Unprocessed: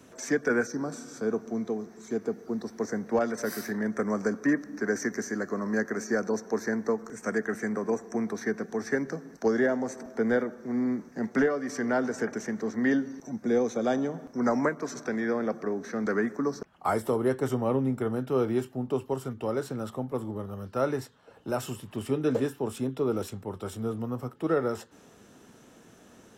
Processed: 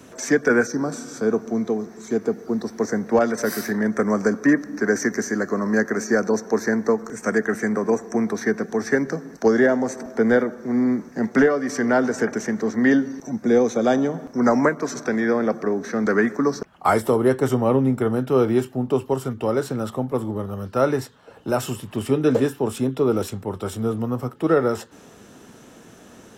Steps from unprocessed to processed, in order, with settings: 16.18–17.01 s: dynamic bell 2.8 kHz, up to +4 dB, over -44 dBFS, Q 0.71; trim +8 dB

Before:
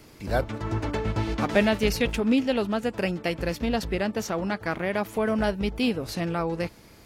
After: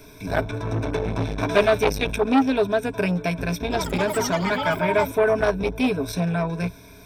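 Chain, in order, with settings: rippled EQ curve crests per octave 1.6, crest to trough 17 dB; 3.61–5.61 s: ever faster or slower copies 93 ms, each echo +6 st, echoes 3, each echo -6 dB; transformer saturation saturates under 1 kHz; trim +2 dB

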